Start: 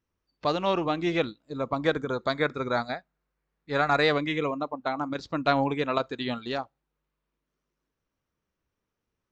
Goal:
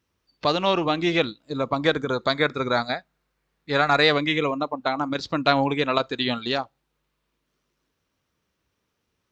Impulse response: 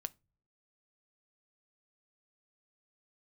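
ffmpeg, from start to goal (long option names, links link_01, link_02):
-filter_complex "[0:a]highpass=49,asplit=2[link_01][link_02];[link_02]acompressor=threshold=-34dB:ratio=6,volume=-1dB[link_03];[link_01][link_03]amix=inputs=2:normalize=0,equalizer=frequency=3800:width=0.8:gain=5.5,volume=1.5dB"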